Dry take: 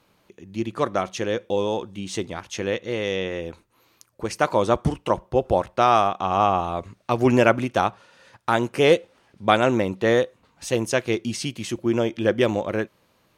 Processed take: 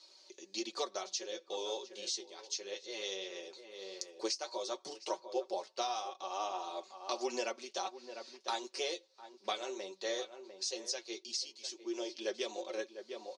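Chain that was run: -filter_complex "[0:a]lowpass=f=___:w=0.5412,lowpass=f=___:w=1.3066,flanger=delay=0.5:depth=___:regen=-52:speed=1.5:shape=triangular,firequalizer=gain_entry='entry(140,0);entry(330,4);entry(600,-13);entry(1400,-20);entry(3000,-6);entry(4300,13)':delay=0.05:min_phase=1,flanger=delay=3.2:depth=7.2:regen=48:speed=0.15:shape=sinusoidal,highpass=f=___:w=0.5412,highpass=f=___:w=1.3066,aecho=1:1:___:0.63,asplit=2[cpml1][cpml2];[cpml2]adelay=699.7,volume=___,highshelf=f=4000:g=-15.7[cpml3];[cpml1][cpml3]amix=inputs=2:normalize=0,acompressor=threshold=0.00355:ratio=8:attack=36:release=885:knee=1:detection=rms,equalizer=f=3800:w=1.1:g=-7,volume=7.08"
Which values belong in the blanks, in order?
4800, 4800, 8.3, 630, 630, 5.3, 0.2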